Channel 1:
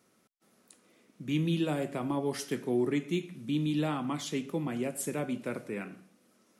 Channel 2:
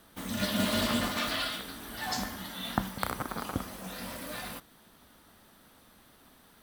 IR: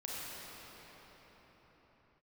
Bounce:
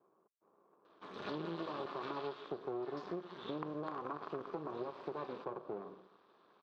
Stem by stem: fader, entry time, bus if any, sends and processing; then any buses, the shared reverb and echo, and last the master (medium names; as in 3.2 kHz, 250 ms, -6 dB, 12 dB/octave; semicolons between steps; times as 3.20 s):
+1.5 dB, 0.00 s, no send, Chebyshev low-pass 1.2 kHz, order 10
-5.0 dB, 0.85 s, no send, none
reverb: none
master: half-wave rectifier; cabinet simulation 230–3800 Hz, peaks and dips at 240 Hz -10 dB, 390 Hz +8 dB, 1.1 kHz +9 dB, 2 kHz -8 dB, 3 kHz -5 dB; compression 6:1, threshold -38 dBFS, peak gain reduction 12 dB